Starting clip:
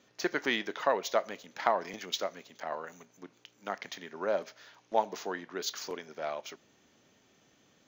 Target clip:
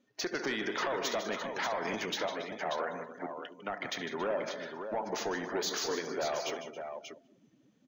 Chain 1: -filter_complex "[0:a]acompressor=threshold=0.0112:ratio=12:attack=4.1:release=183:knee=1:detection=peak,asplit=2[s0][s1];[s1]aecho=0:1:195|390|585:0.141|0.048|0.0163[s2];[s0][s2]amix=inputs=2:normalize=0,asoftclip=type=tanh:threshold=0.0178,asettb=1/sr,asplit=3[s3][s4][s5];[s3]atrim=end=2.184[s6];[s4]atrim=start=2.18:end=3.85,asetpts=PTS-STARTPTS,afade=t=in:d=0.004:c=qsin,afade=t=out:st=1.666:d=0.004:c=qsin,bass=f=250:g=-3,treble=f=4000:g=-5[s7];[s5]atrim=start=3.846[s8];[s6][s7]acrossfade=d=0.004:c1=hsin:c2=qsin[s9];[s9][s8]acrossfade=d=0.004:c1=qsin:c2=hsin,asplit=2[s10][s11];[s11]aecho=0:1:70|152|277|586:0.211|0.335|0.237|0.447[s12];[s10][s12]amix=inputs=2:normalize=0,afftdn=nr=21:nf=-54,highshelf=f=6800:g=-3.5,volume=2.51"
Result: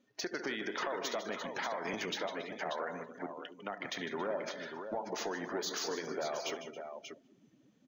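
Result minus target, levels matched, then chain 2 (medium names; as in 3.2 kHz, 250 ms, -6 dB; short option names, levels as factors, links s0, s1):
compression: peak gain reduction +5.5 dB
-filter_complex "[0:a]acompressor=threshold=0.0224:ratio=12:attack=4.1:release=183:knee=1:detection=peak,asplit=2[s0][s1];[s1]aecho=0:1:195|390|585:0.141|0.048|0.0163[s2];[s0][s2]amix=inputs=2:normalize=0,asoftclip=type=tanh:threshold=0.0178,asettb=1/sr,asplit=3[s3][s4][s5];[s3]atrim=end=2.184[s6];[s4]atrim=start=2.18:end=3.85,asetpts=PTS-STARTPTS,afade=t=in:d=0.004:c=qsin,afade=t=out:st=1.666:d=0.004:c=qsin,bass=f=250:g=-3,treble=f=4000:g=-5[s7];[s5]atrim=start=3.846[s8];[s6][s7]acrossfade=d=0.004:c1=hsin:c2=qsin[s9];[s9][s8]acrossfade=d=0.004:c1=qsin:c2=hsin,asplit=2[s10][s11];[s11]aecho=0:1:70|152|277|586:0.211|0.335|0.237|0.447[s12];[s10][s12]amix=inputs=2:normalize=0,afftdn=nr=21:nf=-54,highshelf=f=6800:g=-3.5,volume=2.51"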